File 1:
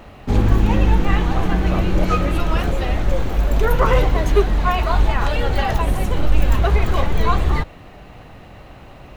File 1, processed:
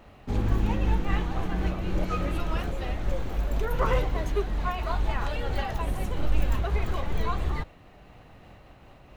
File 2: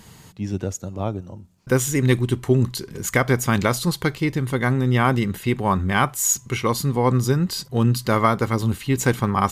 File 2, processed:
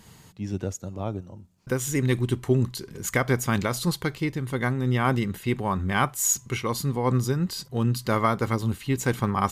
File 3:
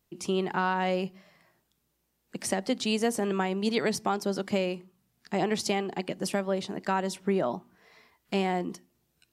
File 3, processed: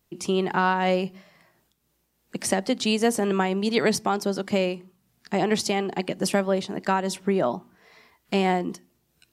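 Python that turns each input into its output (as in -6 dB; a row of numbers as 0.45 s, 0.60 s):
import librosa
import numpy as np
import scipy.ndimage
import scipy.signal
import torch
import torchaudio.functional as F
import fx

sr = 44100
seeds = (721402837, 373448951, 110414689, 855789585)

y = fx.am_noise(x, sr, seeds[0], hz=5.7, depth_pct=55)
y = y * 10.0 ** (-26 / 20.0) / np.sqrt(np.mean(np.square(y)))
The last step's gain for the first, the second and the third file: -8.0 dB, -2.5 dB, +7.0 dB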